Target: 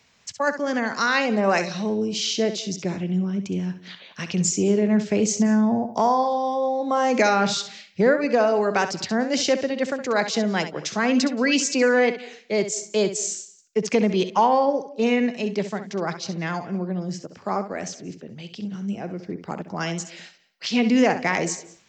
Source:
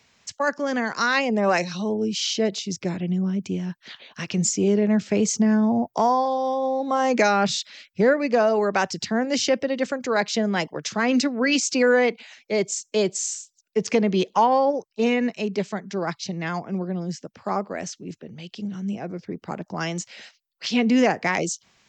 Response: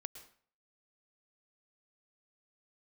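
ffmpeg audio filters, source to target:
-filter_complex "[0:a]asplit=2[a][b];[1:a]atrim=start_sample=2205,adelay=66[c];[b][c]afir=irnorm=-1:irlink=0,volume=-6.5dB[d];[a][d]amix=inputs=2:normalize=0"

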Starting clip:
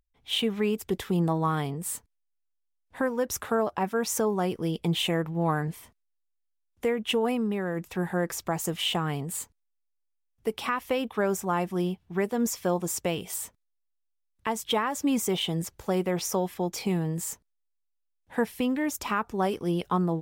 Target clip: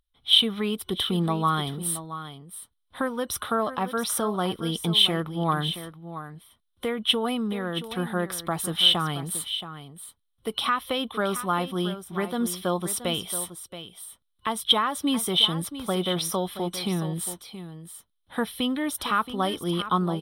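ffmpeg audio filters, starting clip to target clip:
-af "superequalizer=7b=0.708:10b=2:13b=3.98:15b=0.316:16b=2.24,aecho=1:1:675:0.251"

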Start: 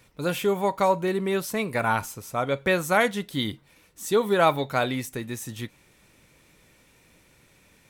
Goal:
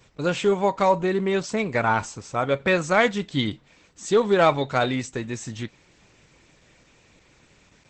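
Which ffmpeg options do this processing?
-filter_complex "[0:a]asplit=3[a][b][c];[a]afade=t=out:st=3.06:d=0.02[d];[b]equalizer=f=140:t=o:w=0.41:g=3,afade=t=in:st=3.06:d=0.02,afade=t=out:st=3.51:d=0.02[e];[c]afade=t=in:st=3.51:d=0.02[f];[d][e][f]amix=inputs=3:normalize=0,asplit=2[g][h];[h]asoftclip=type=hard:threshold=-16.5dB,volume=-6.5dB[i];[g][i]amix=inputs=2:normalize=0" -ar 48000 -c:a libopus -b:a 12k

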